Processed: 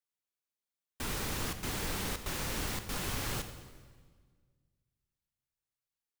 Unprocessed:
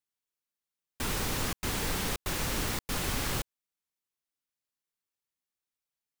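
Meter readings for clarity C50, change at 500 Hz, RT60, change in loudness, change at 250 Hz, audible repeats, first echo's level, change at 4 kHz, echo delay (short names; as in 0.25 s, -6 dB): 9.5 dB, -4.0 dB, 1.6 s, -4.0 dB, -4.0 dB, 1, -15.0 dB, -4.0 dB, 88 ms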